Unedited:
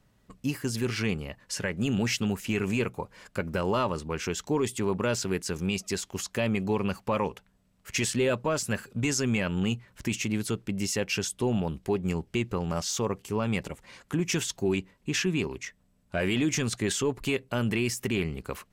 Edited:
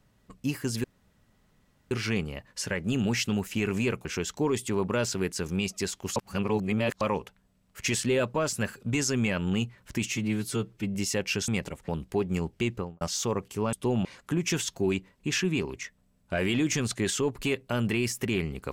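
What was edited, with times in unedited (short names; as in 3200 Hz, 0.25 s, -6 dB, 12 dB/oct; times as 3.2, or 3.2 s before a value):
0.84 insert room tone 1.07 s
2.98–4.15 cut
6.26–7.11 reverse
10.21–10.77 stretch 1.5×
11.3–11.62 swap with 13.47–13.87
12.45–12.75 studio fade out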